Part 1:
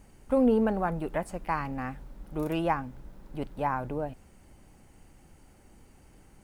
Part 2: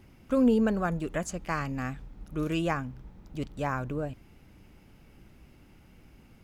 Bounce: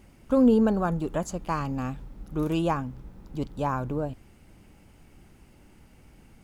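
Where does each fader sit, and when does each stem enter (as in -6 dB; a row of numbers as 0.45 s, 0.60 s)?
-3.0 dB, -0.5 dB; 0.00 s, 0.00 s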